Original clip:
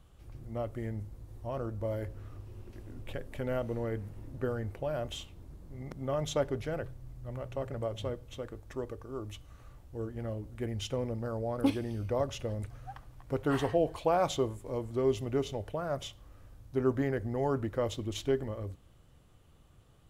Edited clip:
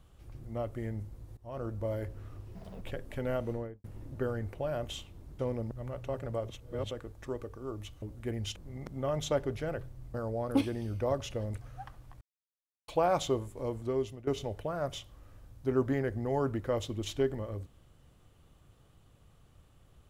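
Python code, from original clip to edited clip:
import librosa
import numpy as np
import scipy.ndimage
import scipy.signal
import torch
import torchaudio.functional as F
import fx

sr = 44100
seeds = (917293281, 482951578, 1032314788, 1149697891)

y = fx.studio_fade_out(x, sr, start_s=3.7, length_s=0.36)
y = fx.edit(y, sr, fx.fade_in_from(start_s=1.37, length_s=0.3, floor_db=-20.5),
    fx.speed_span(start_s=2.55, length_s=0.48, speed=1.84),
    fx.swap(start_s=5.61, length_s=1.58, other_s=10.91, other_length_s=0.32),
    fx.reverse_span(start_s=7.97, length_s=0.42),
    fx.cut(start_s=9.5, length_s=0.87),
    fx.silence(start_s=13.3, length_s=0.67),
    fx.fade_out_to(start_s=14.88, length_s=0.48, floor_db=-17.0), tone=tone)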